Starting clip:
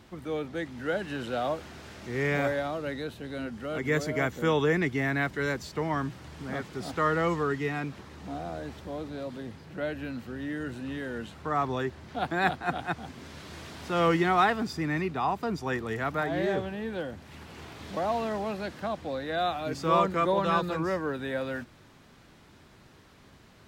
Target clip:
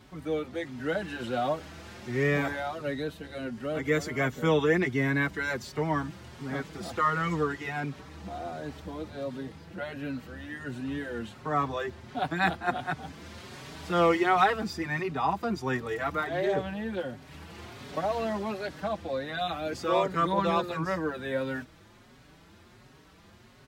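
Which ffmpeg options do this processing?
ffmpeg -i in.wav -filter_complex "[0:a]asplit=2[link_01][link_02];[link_02]adelay=5,afreqshift=1.4[link_03];[link_01][link_03]amix=inputs=2:normalize=1,volume=3dB" out.wav

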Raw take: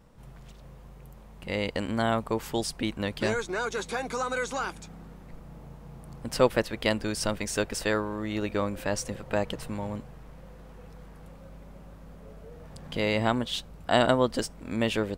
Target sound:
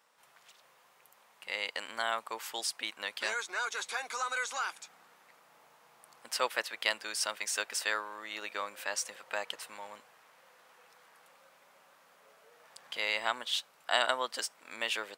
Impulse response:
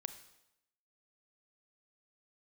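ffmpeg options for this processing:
-af "highpass=1100"

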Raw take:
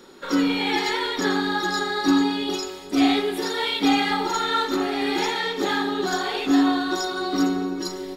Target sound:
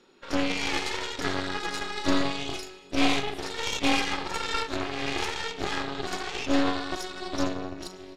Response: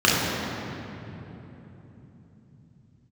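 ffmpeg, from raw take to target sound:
-filter_complex "[0:a]lowpass=7700,equalizer=frequency=2600:width=3.9:gain=8.5,aeval=exprs='0.562*(cos(1*acos(clip(val(0)/0.562,-1,1)))-cos(1*PI/2))+0.0631*(cos(3*acos(clip(val(0)/0.562,-1,1)))-cos(3*PI/2))+0.0708*(cos(4*acos(clip(val(0)/0.562,-1,1)))-cos(4*PI/2))+0.0224*(cos(7*acos(clip(val(0)/0.562,-1,1)))-cos(7*PI/2))+0.0398*(cos(8*acos(clip(val(0)/0.562,-1,1)))-cos(8*PI/2))':channel_layout=same,asettb=1/sr,asplit=3[link_01][link_02][link_03];[link_01]atrim=end=1.784[link_04];[link_02]atrim=start=1.78:end=3.39,asetpts=PTS-STARTPTS,afade=type=in:duration=0.004:curve=qsin,afade=type=out:start_time=1.606:duration=0.004:curve=qsin,asplit=2[link_05][link_06];[link_06]adelay=37,volume=-8dB[link_07];[link_05][link_07]amix=inputs=2:normalize=0,atrim=end_sample=71001[link_08];[link_03]atrim=start=3.386[link_09];[link_04][link_08]acrossfade=duration=0.004:curve1=hsin:curve2=qsin[link_10];[link_10][link_09]acrossfade=duration=0.004:curve1=qsin:curve2=hsin,volume=-4dB"

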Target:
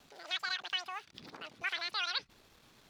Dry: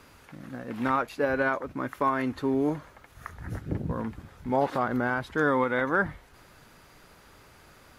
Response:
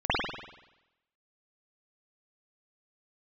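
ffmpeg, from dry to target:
-filter_complex "[0:a]acrossover=split=460|850[link_01][link_02][link_03];[link_01]acompressor=threshold=-46dB:ratio=5[link_04];[link_04][link_02][link_03]amix=inputs=3:normalize=0,asetrate=121716,aresample=44100,anlmdn=0.000631,acrossover=split=6200[link_05][link_06];[link_06]acompressor=threshold=-58dB:ratio=4:attack=1:release=60[link_07];[link_05][link_07]amix=inputs=2:normalize=0,volume=-7dB"

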